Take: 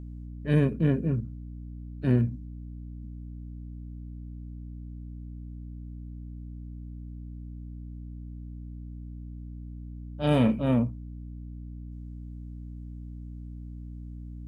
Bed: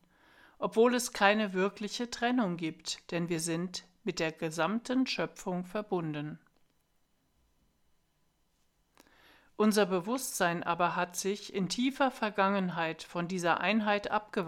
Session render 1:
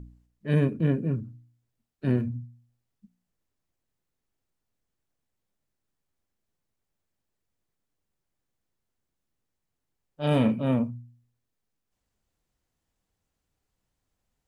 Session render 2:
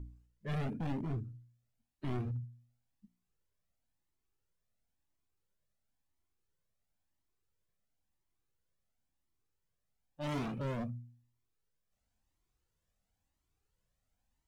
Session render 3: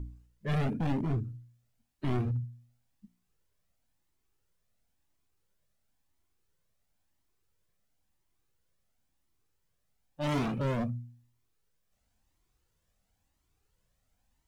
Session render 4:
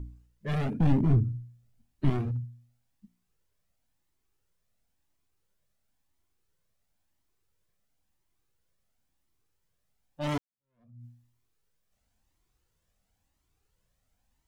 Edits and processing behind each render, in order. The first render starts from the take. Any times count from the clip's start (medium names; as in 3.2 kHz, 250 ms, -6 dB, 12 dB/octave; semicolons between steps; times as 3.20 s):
de-hum 60 Hz, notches 5
hard clipper -29 dBFS, distortion -5 dB; Shepard-style flanger rising 0.97 Hz
trim +6.5 dB
0.80–2.10 s: bass shelf 300 Hz +10.5 dB; 10.38–11.05 s: fade in exponential